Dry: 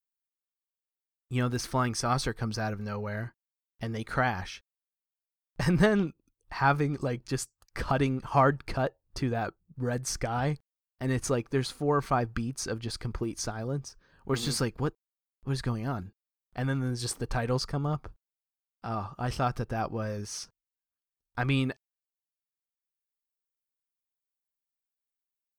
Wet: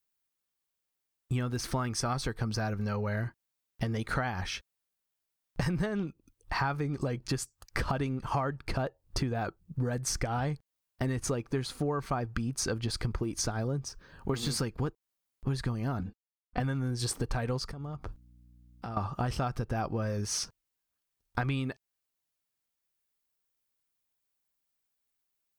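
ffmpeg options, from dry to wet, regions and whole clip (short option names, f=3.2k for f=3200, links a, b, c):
-filter_complex "[0:a]asettb=1/sr,asplit=3[a][b][c];[a]atrim=end=15.994[d];[b]atrim=start=15.99:end=16.6,asetpts=PTS-STARTPTS,afade=t=in:d=0.004:c=qsin,afade=t=out:st=0.606:d=0.004:c=qsin,aemphasis=mode=reproduction:type=50fm,agate=range=-33dB:threshold=-55dB:ratio=3:release=100:detection=peak,aecho=1:1:4:0.88,atrim=end_sample=26901[e];[c]atrim=start=16.596[f];[d][e]acrossfade=d=0.004:c1=hsin:c2=qsin[g];[g][f]acrossfade=d=0.004:c1=qsin:c2=hsin,asettb=1/sr,asplit=3[h][i][j];[h]atrim=end=17.714[k];[i]atrim=start=17.71:end=18.97,asetpts=PTS-STARTPTS,afade=t=in:d=0.004:c=qsin,afade=t=out:st=1.256:d=0.004:c=qsin,acompressor=threshold=-43dB:ratio=20:attack=3.2:release=140:knee=1:detection=peak,aeval=exprs='val(0)+0.000447*(sin(2*PI*60*n/s)+sin(2*PI*2*60*n/s)/2+sin(2*PI*3*60*n/s)/3+sin(2*PI*4*60*n/s)/4+sin(2*PI*5*60*n/s)/5)':c=same[l];[j]atrim=start=18.966[m];[k][l]acrossfade=d=0.004:c1=hsin:c2=qsin[n];[n][m]acrossfade=d=0.004:c1=qsin:c2=hsin,equalizer=f=72:w=0.43:g=3,acompressor=threshold=-36dB:ratio=10,volume=8dB"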